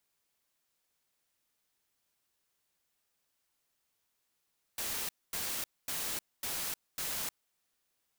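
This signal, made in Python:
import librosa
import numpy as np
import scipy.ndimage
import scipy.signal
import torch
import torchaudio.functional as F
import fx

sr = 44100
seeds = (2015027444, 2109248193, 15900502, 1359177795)

y = fx.noise_burst(sr, seeds[0], colour='white', on_s=0.31, off_s=0.24, bursts=5, level_db=-36.5)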